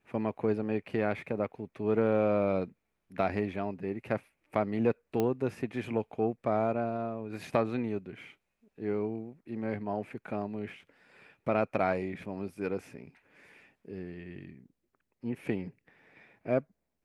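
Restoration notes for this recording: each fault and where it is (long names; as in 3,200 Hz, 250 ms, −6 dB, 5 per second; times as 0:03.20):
0:05.20: click −17 dBFS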